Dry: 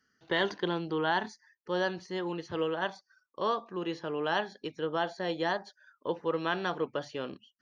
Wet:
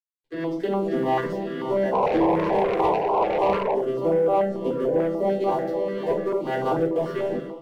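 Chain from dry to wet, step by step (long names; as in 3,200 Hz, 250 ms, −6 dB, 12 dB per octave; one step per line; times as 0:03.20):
vocoder with an arpeggio as carrier major triad, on C3, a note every 305 ms
high-pass filter 210 Hz 24 dB per octave
dead-zone distortion −58 dBFS
0:03.70–0:05.23: octave-band graphic EQ 500/2,000/4,000 Hz +6/−5/−5 dB
feedback delay with all-pass diffusion 625 ms, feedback 49%, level −11.5 dB
dynamic equaliser 3,300 Hz, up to −7 dB, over −54 dBFS, Q 0.88
downward compressor, threshold −34 dBFS, peak gain reduction 9 dB
0:01.92–0:03.74: sound drawn into the spectrogram noise 390–1,100 Hz −36 dBFS
convolution reverb RT60 0.40 s, pre-delay 3 ms, DRR −4.5 dB
soft clipping −23.5 dBFS, distortion −15 dB
automatic gain control gain up to 15.5 dB
notch on a step sequencer 6.8 Hz 780–1,800 Hz
level −4.5 dB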